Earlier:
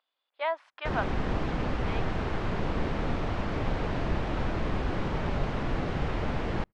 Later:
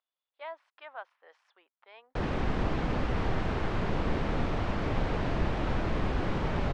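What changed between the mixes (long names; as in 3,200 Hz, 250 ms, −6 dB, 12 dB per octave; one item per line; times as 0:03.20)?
speech −11.5 dB
background: entry +1.30 s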